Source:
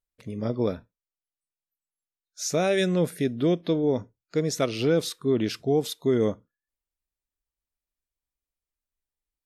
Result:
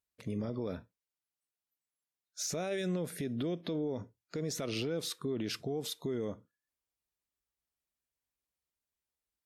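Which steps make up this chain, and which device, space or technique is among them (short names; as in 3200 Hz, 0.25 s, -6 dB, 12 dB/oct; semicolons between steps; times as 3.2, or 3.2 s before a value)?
podcast mastering chain (HPF 69 Hz; de-esser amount 65%; compressor 4:1, threshold -25 dBFS, peak gain reduction 7 dB; limiter -26.5 dBFS, peak gain reduction 11.5 dB; MP3 96 kbps 44100 Hz)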